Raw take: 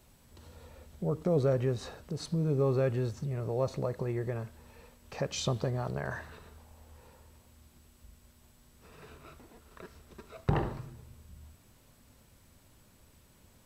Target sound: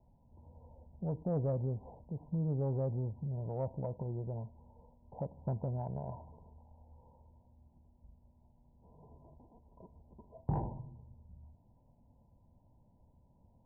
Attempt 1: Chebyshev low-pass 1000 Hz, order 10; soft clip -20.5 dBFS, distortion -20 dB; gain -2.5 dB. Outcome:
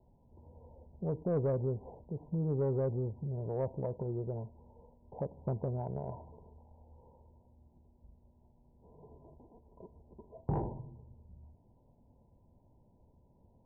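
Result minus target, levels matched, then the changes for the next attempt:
500 Hz band +3.0 dB
add after Chebyshev low-pass: bell 400 Hz -8.5 dB 0.69 oct

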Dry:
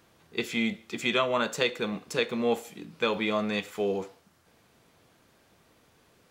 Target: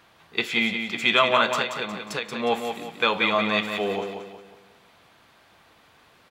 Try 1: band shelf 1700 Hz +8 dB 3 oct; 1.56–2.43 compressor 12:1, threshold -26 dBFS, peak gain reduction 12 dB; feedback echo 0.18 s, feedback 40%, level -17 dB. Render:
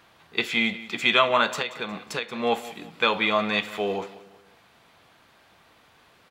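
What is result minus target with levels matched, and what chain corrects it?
echo-to-direct -10.5 dB
band shelf 1700 Hz +8 dB 3 oct; 1.56–2.43 compressor 12:1, threshold -26 dBFS, peak gain reduction 12 dB; feedback echo 0.18 s, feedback 40%, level -6.5 dB

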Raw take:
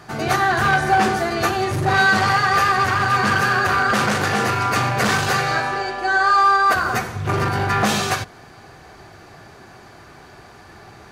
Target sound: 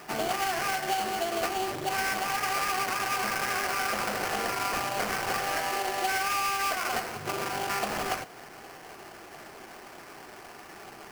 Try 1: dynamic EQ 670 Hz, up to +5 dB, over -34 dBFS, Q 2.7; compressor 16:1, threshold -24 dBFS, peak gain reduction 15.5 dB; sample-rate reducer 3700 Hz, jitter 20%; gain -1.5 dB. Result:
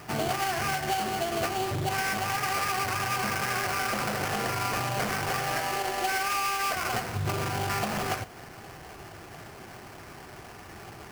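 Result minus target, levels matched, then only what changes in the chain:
250 Hz band +3.0 dB
add after compressor: HPF 270 Hz 12 dB/oct

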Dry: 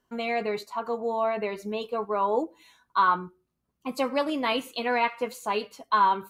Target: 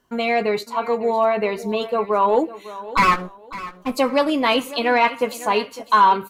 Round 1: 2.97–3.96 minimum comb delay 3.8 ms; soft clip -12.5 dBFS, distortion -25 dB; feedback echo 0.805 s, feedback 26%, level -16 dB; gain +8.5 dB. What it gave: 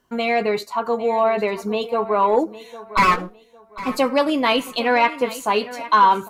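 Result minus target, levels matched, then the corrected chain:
echo 0.252 s late
2.97–3.96 minimum comb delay 3.8 ms; soft clip -12.5 dBFS, distortion -25 dB; feedback echo 0.553 s, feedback 26%, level -16 dB; gain +8.5 dB

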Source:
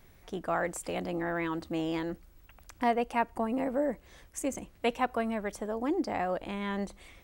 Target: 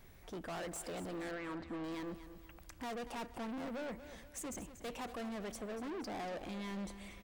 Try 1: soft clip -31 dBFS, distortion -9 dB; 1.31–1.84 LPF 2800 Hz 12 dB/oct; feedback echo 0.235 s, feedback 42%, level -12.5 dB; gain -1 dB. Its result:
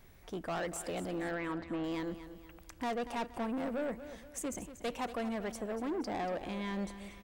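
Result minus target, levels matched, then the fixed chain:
soft clip: distortion -5 dB
soft clip -39.5 dBFS, distortion -4 dB; 1.31–1.84 LPF 2800 Hz 12 dB/oct; feedback echo 0.235 s, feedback 42%, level -12.5 dB; gain -1 dB

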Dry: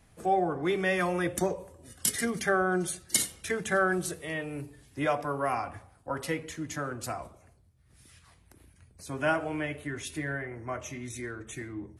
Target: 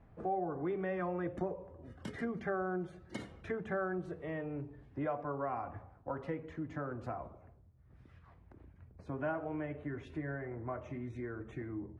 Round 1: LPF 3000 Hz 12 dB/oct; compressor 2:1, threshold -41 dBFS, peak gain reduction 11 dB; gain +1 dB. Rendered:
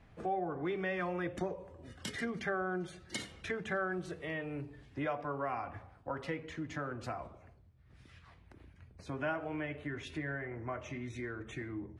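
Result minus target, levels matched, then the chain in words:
4000 Hz band +12.0 dB
LPF 1200 Hz 12 dB/oct; compressor 2:1, threshold -41 dBFS, peak gain reduction 10.5 dB; gain +1 dB

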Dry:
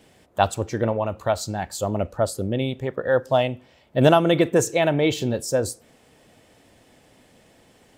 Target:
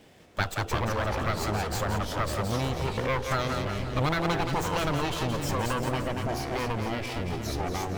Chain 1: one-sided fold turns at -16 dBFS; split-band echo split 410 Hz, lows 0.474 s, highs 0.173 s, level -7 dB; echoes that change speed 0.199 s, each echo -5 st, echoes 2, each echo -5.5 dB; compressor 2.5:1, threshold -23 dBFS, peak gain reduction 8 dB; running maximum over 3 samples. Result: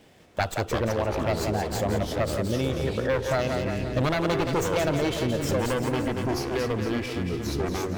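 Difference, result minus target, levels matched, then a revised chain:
one-sided fold: distortion -12 dB
one-sided fold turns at -25 dBFS; split-band echo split 410 Hz, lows 0.474 s, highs 0.173 s, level -7 dB; echoes that change speed 0.199 s, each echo -5 st, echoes 2, each echo -5.5 dB; compressor 2.5:1, threshold -23 dBFS, peak gain reduction 9 dB; running maximum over 3 samples

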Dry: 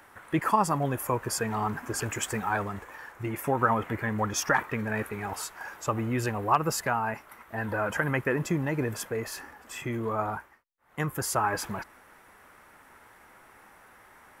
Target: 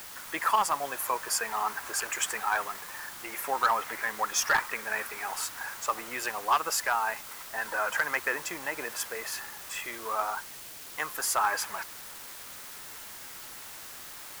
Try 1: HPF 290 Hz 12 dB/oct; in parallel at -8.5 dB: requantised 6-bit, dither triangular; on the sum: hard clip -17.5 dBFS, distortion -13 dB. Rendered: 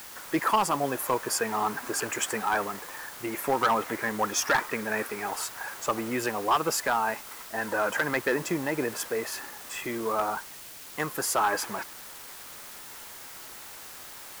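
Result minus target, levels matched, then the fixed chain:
250 Hz band +13.0 dB
HPF 830 Hz 12 dB/oct; in parallel at -8.5 dB: requantised 6-bit, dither triangular; on the sum: hard clip -17.5 dBFS, distortion -16 dB

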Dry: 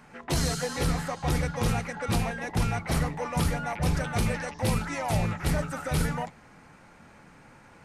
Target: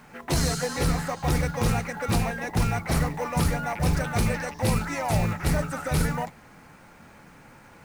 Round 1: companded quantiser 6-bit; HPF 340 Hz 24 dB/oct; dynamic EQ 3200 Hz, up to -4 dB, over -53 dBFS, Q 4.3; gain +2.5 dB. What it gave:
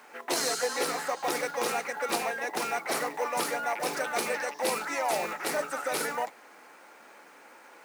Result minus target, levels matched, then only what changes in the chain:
250 Hz band -8.5 dB
remove: HPF 340 Hz 24 dB/oct

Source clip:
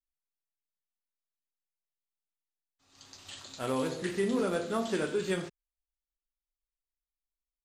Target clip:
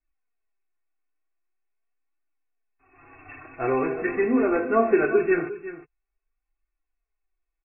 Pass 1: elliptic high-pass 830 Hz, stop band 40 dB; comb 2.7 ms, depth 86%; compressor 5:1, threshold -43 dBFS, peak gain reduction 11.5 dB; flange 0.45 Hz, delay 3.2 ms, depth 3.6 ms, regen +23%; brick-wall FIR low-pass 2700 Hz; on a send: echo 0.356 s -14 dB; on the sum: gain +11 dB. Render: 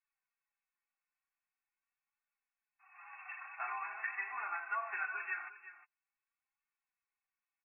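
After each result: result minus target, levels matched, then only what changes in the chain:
compressor: peak gain reduction +11.5 dB; 1000 Hz band +6.0 dB
remove: compressor 5:1, threshold -43 dBFS, peak gain reduction 11.5 dB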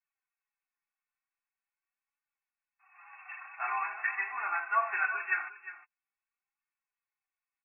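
1000 Hz band +6.0 dB
remove: elliptic high-pass 830 Hz, stop band 40 dB

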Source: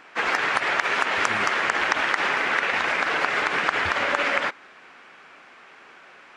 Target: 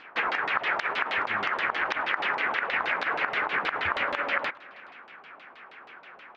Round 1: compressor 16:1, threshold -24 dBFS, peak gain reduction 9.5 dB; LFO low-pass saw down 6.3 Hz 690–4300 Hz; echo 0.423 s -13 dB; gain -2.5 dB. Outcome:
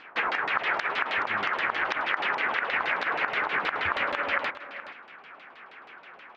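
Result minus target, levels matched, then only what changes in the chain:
echo-to-direct +11.5 dB
change: echo 0.423 s -24.5 dB

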